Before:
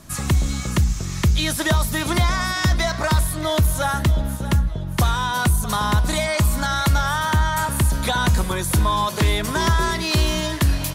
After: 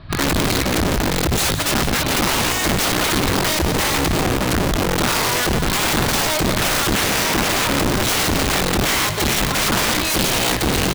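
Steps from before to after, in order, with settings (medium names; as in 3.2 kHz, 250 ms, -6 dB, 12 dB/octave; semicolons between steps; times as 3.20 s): elliptic low-pass 4.3 kHz; resonant low shelf 160 Hz +6 dB, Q 3; hum notches 50/100/150/200 Hz; compressor with a negative ratio -15 dBFS, ratio -1; integer overflow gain 16 dB; delay 171 ms -11 dB; trim +2 dB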